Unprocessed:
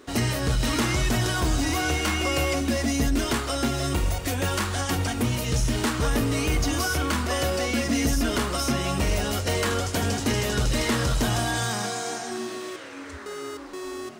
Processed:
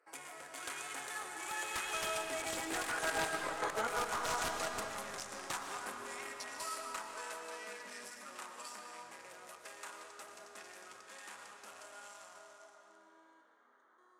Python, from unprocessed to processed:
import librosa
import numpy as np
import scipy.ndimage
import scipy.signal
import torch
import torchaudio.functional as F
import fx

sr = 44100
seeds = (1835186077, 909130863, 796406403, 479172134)

y = fx.wiener(x, sr, points=15)
y = fx.doppler_pass(y, sr, speed_mps=49, closest_m=4.4, pass_at_s=3.53)
y = scipy.signal.sosfilt(scipy.signal.butter(2, 980.0, 'highpass', fs=sr, output='sos'), y)
y = fx.high_shelf_res(y, sr, hz=6700.0, db=10.5, q=1.5)
y = fx.over_compress(y, sr, threshold_db=-50.0, ratio=-0.5)
y = (np.mod(10.0 ** (40.0 / 20.0) * y + 1.0, 2.0) - 1.0) / 10.0 ** (40.0 / 20.0)
y = fx.air_absorb(y, sr, metres=55.0)
y = fx.rev_freeverb(y, sr, rt60_s=2.7, hf_ratio=0.8, predelay_ms=80, drr_db=3.5)
y = y * 10.0 ** (16.0 / 20.0)